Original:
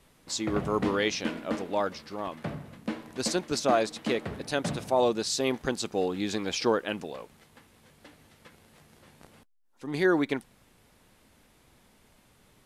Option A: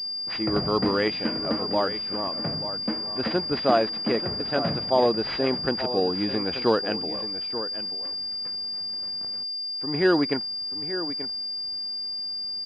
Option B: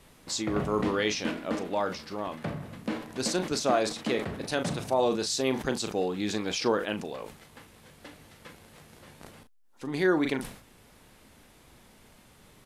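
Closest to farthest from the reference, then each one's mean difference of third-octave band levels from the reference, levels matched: B, A; 3.0 dB, 6.5 dB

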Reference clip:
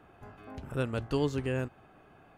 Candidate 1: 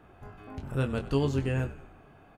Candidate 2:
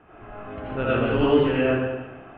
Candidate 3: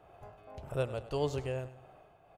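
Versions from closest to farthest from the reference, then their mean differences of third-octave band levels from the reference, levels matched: 1, 3, 2; 2.0 dB, 3.0 dB, 7.5 dB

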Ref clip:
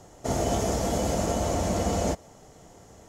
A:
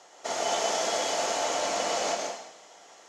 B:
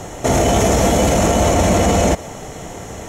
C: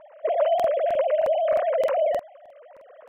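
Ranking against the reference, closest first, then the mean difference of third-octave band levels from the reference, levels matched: B, A, C; 3.5 dB, 9.5 dB, 18.0 dB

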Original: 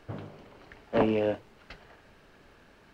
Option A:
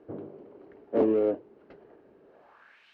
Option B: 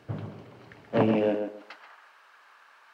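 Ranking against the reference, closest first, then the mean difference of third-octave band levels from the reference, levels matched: B, A; 5.0 dB, 8.0 dB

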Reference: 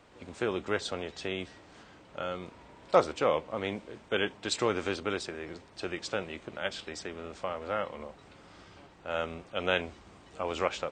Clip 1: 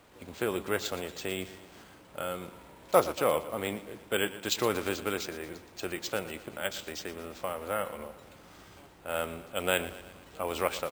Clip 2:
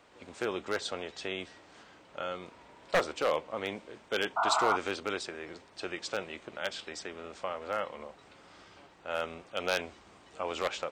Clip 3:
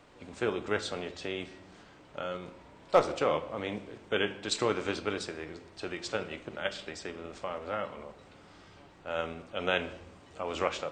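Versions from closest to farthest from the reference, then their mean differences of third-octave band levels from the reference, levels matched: 3, 2, 1; 1.5 dB, 2.5 dB, 5.0 dB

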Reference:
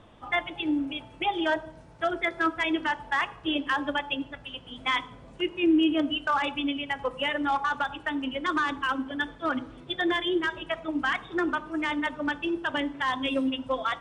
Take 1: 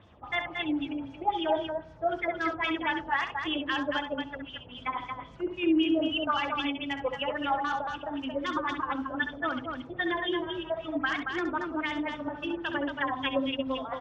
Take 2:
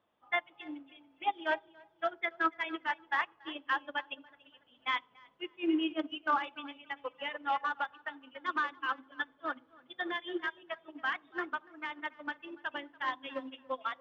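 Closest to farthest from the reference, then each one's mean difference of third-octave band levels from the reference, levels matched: 1, 2; 4.5 dB, 7.0 dB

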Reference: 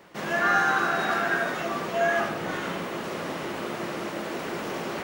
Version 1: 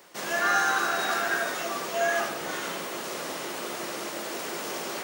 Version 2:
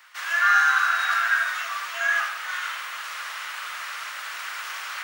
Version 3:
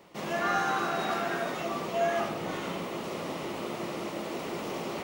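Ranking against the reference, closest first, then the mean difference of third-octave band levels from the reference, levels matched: 3, 1, 2; 2.0 dB, 5.5 dB, 14.0 dB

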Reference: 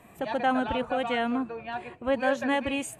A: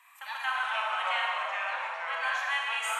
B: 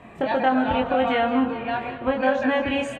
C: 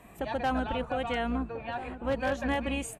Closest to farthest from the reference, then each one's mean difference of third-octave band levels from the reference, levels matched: C, B, A; 3.0 dB, 4.5 dB, 14.0 dB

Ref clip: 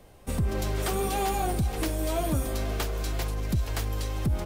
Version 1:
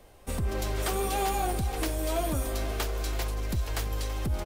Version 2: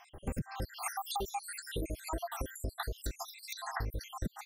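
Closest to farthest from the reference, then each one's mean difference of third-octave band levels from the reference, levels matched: 1, 2; 2.5 dB, 17.5 dB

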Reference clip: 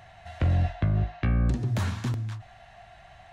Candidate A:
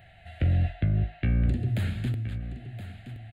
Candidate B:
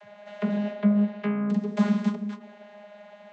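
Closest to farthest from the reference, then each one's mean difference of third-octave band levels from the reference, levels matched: A, B; 5.0 dB, 7.5 dB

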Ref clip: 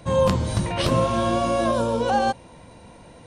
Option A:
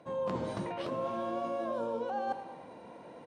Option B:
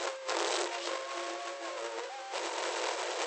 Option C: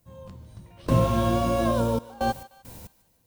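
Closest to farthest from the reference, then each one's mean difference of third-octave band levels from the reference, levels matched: A, C, B; 6.0 dB, 10.0 dB, 16.0 dB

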